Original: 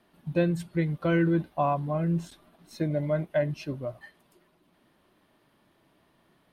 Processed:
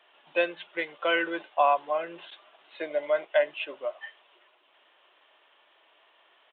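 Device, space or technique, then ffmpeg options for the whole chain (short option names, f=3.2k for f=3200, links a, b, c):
musical greeting card: -af "aresample=8000,aresample=44100,highpass=f=520:w=0.5412,highpass=f=520:w=1.3066,equalizer=f=630:t=o:w=0.77:g=-2,equalizer=f=2.9k:t=o:w=0.57:g=7.5,volume=6dB"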